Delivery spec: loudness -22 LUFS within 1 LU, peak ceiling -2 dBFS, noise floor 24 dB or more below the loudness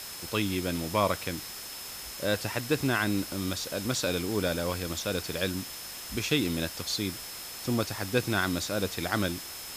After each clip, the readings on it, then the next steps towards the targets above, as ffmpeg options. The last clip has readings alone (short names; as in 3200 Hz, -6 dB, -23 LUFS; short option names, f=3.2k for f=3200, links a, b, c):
steady tone 5200 Hz; tone level -45 dBFS; noise floor -41 dBFS; noise floor target -55 dBFS; loudness -30.5 LUFS; peak -12.0 dBFS; loudness target -22.0 LUFS
-> -af "bandreject=f=5.2k:w=30"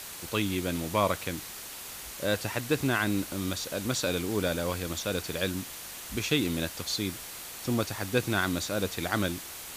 steady tone none; noise floor -42 dBFS; noise floor target -55 dBFS
-> -af "afftdn=nr=13:nf=-42"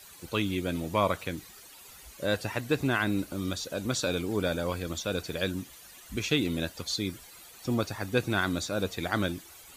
noise floor -51 dBFS; noise floor target -55 dBFS
-> -af "afftdn=nr=6:nf=-51"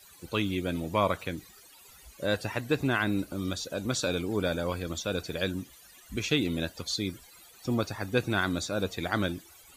noise floor -55 dBFS; loudness -31.0 LUFS; peak -12.0 dBFS; loudness target -22.0 LUFS
-> -af "volume=9dB"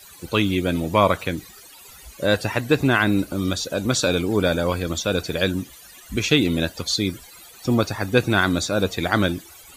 loudness -22.0 LUFS; peak -3.0 dBFS; noise floor -46 dBFS